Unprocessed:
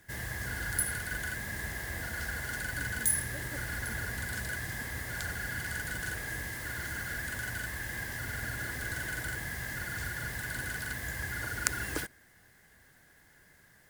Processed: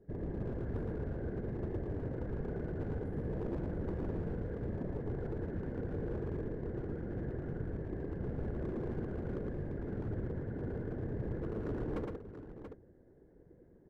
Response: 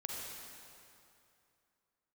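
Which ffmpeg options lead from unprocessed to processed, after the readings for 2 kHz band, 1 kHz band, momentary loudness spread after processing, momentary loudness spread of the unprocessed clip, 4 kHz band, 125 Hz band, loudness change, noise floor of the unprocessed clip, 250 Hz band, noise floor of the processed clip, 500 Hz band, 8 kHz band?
-23.0 dB, -8.0 dB, 2 LU, 6 LU, under -25 dB, +2.0 dB, -5.0 dB, -61 dBFS, +7.0 dB, -61 dBFS, +8.0 dB, under -40 dB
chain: -af "lowpass=f=400:t=q:w=4.9,lowshelf=f=64:g=6.5,afftfilt=real='hypot(re,im)*cos(2*PI*random(0))':imag='hypot(re,im)*sin(2*PI*random(1))':win_size=512:overlap=0.75,asoftclip=type=hard:threshold=-40dB,aecho=1:1:113|683:0.668|0.335,volume=5.5dB"

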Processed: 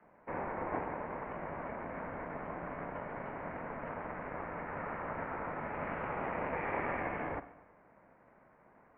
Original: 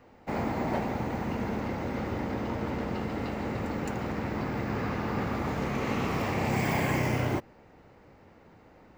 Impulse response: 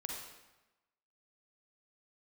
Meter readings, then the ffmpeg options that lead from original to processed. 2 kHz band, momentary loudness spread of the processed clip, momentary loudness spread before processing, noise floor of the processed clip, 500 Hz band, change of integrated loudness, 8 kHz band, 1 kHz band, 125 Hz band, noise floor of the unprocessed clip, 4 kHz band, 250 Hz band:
-5.5 dB, 6 LU, 6 LU, -64 dBFS, -6.5 dB, -8.5 dB, under -30 dB, -4.5 dB, -16.0 dB, -56 dBFS, under -20 dB, -13.5 dB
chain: -filter_complex "[0:a]highpass=f=440:t=q:w=0.5412,highpass=f=440:t=q:w=1.307,lowpass=f=2.1k:t=q:w=0.5176,lowpass=f=2.1k:t=q:w=0.7071,lowpass=f=2.1k:t=q:w=1.932,afreqshift=-80,asplit=2[a][b];[1:a]atrim=start_sample=2205[c];[b][c]afir=irnorm=-1:irlink=0,volume=-9.5dB[d];[a][d]amix=inputs=2:normalize=0,aeval=exprs='val(0)*sin(2*PI*210*n/s)':c=same,volume=-2.5dB"

